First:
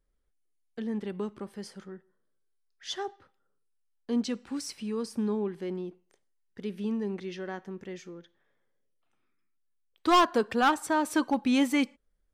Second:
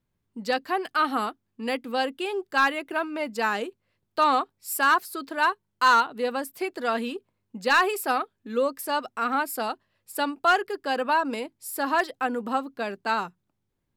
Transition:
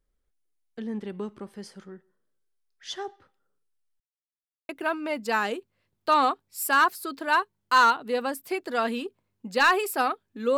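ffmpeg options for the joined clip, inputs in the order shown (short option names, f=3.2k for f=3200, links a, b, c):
-filter_complex "[0:a]apad=whole_dur=10.57,atrim=end=10.57,asplit=2[a][b];[a]atrim=end=4,asetpts=PTS-STARTPTS,afade=t=out:st=3.996:d=0.004:c=hsin[c];[b]atrim=start=4:end=4.69,asetpts=PTS-STARTPTS,volume=0[d];[1:a]atrim=start=2.79:end=8.67,asetpts=PTS-STARTPTS,afade=t=in:d=0.004:c=hsin[e];[c][d][e]concat=n=3:v=0:a=1"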